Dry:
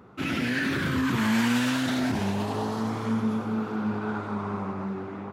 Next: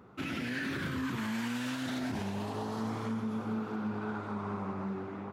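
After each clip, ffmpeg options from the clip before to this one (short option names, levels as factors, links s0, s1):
-af "alimiter=limit=0.075:level=0:latency=1:release=203,volume=0.596"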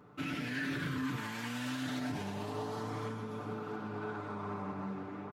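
-af "aecho=1:1:6.8:0.63,volume=0.708"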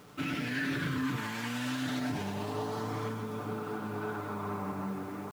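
-af "acrusher=bits=9:mix=0:aa=0.000001,volume=1.5"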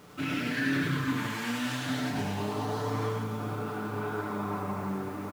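-af "aecho=1:1:29.15|102:0.708|0.794"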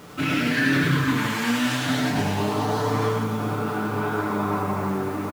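-filter_complex "[0:a]asplit=2[s0][s1];[s1]adelay=13,volume=0.251[s2];[s0][s2]amix=inputs=2:normalize=0,volume=2.66"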